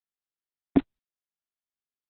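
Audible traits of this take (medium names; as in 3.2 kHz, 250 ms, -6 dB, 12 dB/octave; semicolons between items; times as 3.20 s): random-step tremolo 3.9 Hz, depth 95%; a quantiser's noise floor 8-bit, dither none; Opus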